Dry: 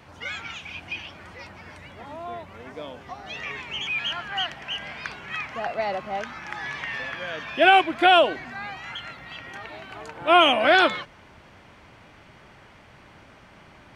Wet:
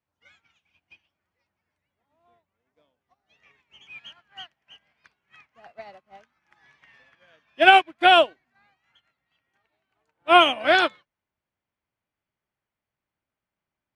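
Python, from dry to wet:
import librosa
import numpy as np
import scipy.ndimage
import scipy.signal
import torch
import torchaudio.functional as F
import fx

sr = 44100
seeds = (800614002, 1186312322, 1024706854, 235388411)

y = fx.high_shelf(x, sr, hz=4200.0, db=3.5)
y = fx.upward_expand(y, sr, threshold_db=-40.0, expansion=2.5)
y = y * 10.0 ** (3.5 / 20.0)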